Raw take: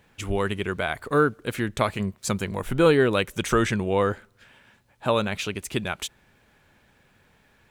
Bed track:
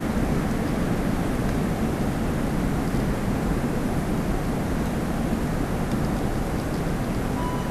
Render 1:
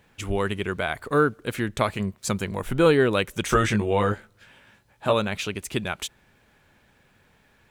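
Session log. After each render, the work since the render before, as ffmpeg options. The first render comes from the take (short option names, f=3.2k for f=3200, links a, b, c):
-filter_complex "[0:a]asettb=1/sr,asplit=3[a][b][c];[a]atrim=end=3.474[d];[b]atrim=start=3.47:end=5.13,asetpts=PTS-STARTPTS,afade=t=in:d=0.004:c=qsin,afade=t=out:st=1.656:d=0.004:c=qsin,asplit=2[e][f];[f]adelay=19,volume=-4dB[g];[e][g]amix=inputs=2:normalize=0,atrim=end_sample=73206[h];[c]atrim=start=5.126[i];[d][h]acrossfade=d=0.004:c1=hsin:c2=qsin[j];[j][i]acrossfade=d=0.004:c1=qsin:c2=hsin"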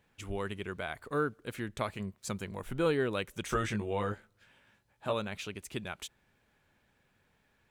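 -af "volume=-11dB"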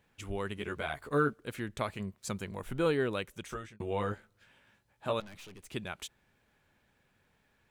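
-filter_complex "[0:a]asettb=1/sr,asplit=3[a][b][c];[a]atrim=end=0.564[d];[b]atrim=start=0.56:end=1.33,asetpts=PTS-STARTPTS,afade=t=in:d=0.004:c=qsin,afade=t=out:st=0.766:d=0.004:c=qsin,asplit=2[e][f];[f]adelay=14,volume=-2dB[g];[e][g]amix=inputs=2:normalize=0,atrim=end_sample=33957[h];[c]atrim=start=1.326[i];[d][h]acrossfade=d=0.004:c1=hsin:c2=qsin[j];[j][i]acrossfade=d=0.004:c1=qsin:c2=hsin,asettb=1/sr,asplit=3[k][l][m];[k]atrim=end=5.204[n];[l]atrim=start=5.2:end=5.7,asetpts=PTS-STARTPTS,afade=t=in:d=0.004:c=qsin,afade=t=out:st=0.496:d=0.004:c=qsin,aeval=exprs='(tanh(251*val(0)+0.55)-tanh(0.55))/251':c=same[o];[m]atrim=start=5.696[p];[n][o]acrossfade=d=0.004:c1=hsin:c2=qsin[q];[q][p]acrossfade=d=0.004:c1=qsin:c2=hsin,asplit=2[r][s];[r]atrim=end=3.8,asetpts=PTS-STARTPTS,afade=t=out:st=3.09:d=0.71[t];[s]atrim=start=3.8,asetpts=PTS-STARTPTS,afade=t=in:d=0.004:c=hsin[u];[t][u]concat=n=2:v=0:a=1"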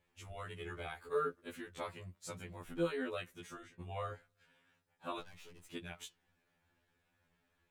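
-af "flanger=delay=2.2:depth=5.9:regen=-81:speed=0.72:shape=triangular,afftfilt=real='re*2*eq(mod(b,4),0)':imag='im*2*eq(mod(b,4),0)':win_size=2048:overlap=0.75"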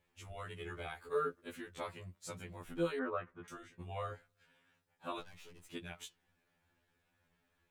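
-filter_complex "[0:a]asettb=1/sr,asplit=3[a][b][c];[a]atrim=end=2.994[d];[b]atrim=start=2.99:end=3.48,asetpts=PTS-STARTPTS,afade=t=in:d=0.004:c=qsin,afade=t=out:st=0.486:d=0.004:c=qsin,lowpass=f=1.2k:t=q:w=2.9[e];[c]atrim=start=3.476[f];[d][e]acrossfade=d=0.004:c1=hsin:c2=qsin[g];[g][f]acrossfade=d=0.004:c1=qsin:c2=hsin"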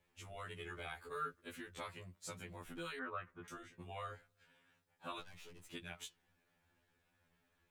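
-filter_complex "[0:a]acrossover=split=150|1100|5500[a][b][c][d];[a]alimiter=level_in=29.5dB:limit=-24dB:level=0:latency=1,volume=-29.5dB[e];[b]acompressor=threshold=-49dB:ratio=6[f];[e][f][c][d]amix=inputs=4:normalize=0"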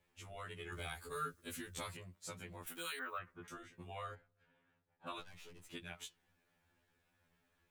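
-filter_complex "[0:a]asettb=1/sr,asplit=3[a][b][c];[a]atrim=end=0.724[d];[b]atrim=start=0.72:end=1.97,asetpts=PTS-STARTPTS,afade=t=in:d=0.004:c=qsin,afade=t=out:st=1.246:d=0.004:c=qsin,bass=f=250:g=7,treble=f=4k:g=12[e];[c]atrim=start=1.966[f];[d][e]acrossfade=d=0.004:c1=hsin:c2=qsin[g];[g][f]acrossfade=d=0.004:c1=qsin:c2=hsin,asplit=3[h][i][j];[h]afade=t=out:st=2.66:d=0.02[k];[i]aemphasis=mode=production:type=riaa,afade=t=in:st=2.66:d=0.02,afade=t=out:st=3.18:d=0.02[l];[j]afade=t=in:st=3.18:d=0.02[m];[k][l][m]amix=inputs=3:normalize=0,asplit=3[n][o][p];[n]afade=t=out:st=4.14:d=0.02[q];[o]lowpass=f=1.1k:p=1,afade=t=in:st=4.14:d=0.02,afade=t=out:st=5.06:d=0.02[r];[p]afade=t=in:st=5.06:d=0.02[s];[q][r][s]amix=inputs=3:normalize=0"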